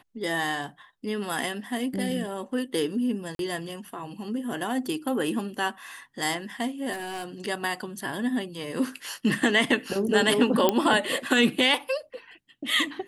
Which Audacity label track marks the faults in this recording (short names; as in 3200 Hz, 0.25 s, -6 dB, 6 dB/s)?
3.350000	3.390000	gap 42 ms
6.920000	7.340000	clipped -30 dBFS
10.690000	10.690000	pop -7 dBFS